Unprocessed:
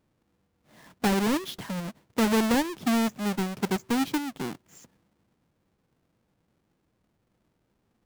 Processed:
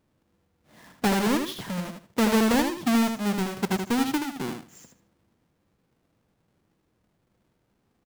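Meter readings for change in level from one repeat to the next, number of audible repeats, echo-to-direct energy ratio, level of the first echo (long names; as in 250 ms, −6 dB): −14.0 dB, 3, −6.0 dB, −6.0 dB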